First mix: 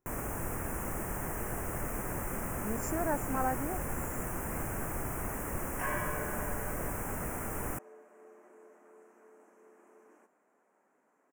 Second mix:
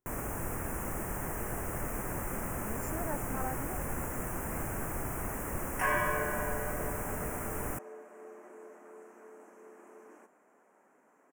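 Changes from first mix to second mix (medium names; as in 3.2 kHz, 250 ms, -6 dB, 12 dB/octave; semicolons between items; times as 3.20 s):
speech -6.5 dB; second sound +6.5 dB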